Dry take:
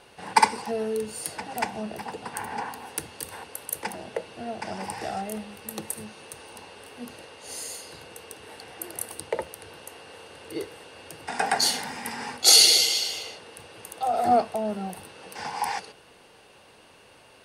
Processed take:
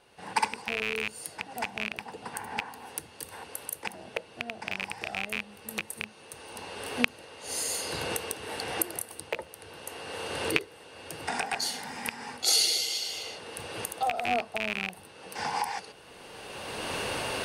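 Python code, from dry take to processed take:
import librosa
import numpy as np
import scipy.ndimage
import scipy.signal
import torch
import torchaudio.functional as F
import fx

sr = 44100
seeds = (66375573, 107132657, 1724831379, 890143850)

y = fx.rattle_buzz(x, sr, strikes_db=-38.0, level_db=-8.0)
y = fx.recorder_agc(y, sr, target_db=-11.5, rise_db_per_s=21.0, max_gain_db=30)
y = F.gain(torch.from_numpy(y), -9.0).numpy()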